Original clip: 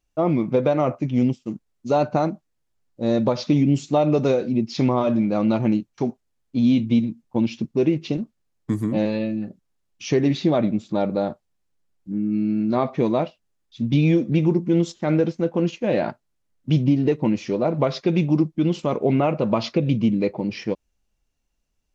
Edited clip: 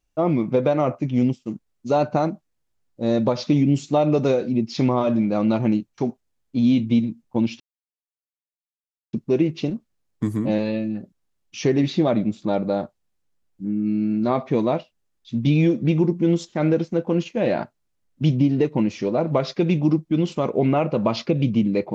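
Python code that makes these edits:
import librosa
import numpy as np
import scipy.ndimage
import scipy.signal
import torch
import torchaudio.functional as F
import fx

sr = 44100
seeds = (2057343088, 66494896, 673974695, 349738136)

y = fx.edit(x, sr, fx.insert_silence(at_s=7.6, length_s=1.53), tone=tone)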